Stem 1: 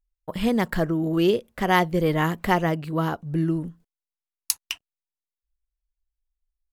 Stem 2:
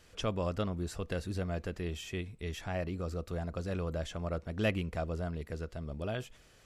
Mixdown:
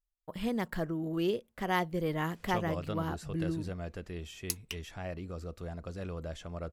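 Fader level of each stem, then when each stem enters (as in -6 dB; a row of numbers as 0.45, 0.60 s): -10.5, -4.0 dB; 0.00, 2.30 s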